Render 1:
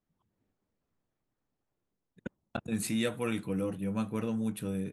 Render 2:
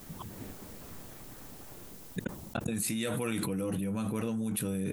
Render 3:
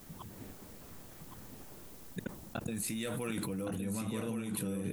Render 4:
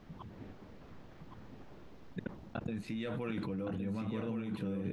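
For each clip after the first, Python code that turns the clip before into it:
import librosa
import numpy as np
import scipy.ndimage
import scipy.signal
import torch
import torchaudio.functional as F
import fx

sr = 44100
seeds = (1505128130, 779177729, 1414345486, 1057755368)

y1 = fx.high_shelf(x, sr, hz=6500.0, db=10.5)
y1 = fx.env_flatten(y1, sr, amount_pct=100)
y1 = y1 * 10.0 ** (-5.0 / 20.0)
y2 = y1 + 10.0 ** (-7.0 / 20.0) * np.pad(y1, (int(1116 * sr / 1000.0), 0))[:len(y1)]
y2 = y2 * 10.0 ** (-4.5 / 20.0)
y3 = fx.block_float(y2, sr, bits=7)
y3 = fx.air_absorb(y3, sr, metres=250.0)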